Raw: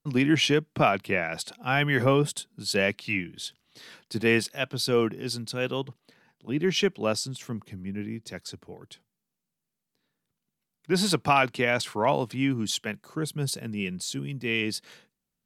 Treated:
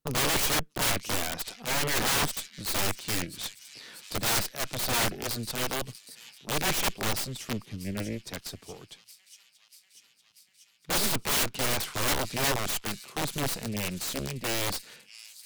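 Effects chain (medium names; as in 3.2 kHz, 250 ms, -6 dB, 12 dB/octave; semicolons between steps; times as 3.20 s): Chebyshev shaper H 3 -18 dB, 6 -19 dB, 8 -11 dB, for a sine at -7.5 dBFS; feedback echo behind a high-pass 639 ms, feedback 74%, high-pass 4.4 kHz, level -17 dB; integer overflow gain 25 dB; trim +3.5 dB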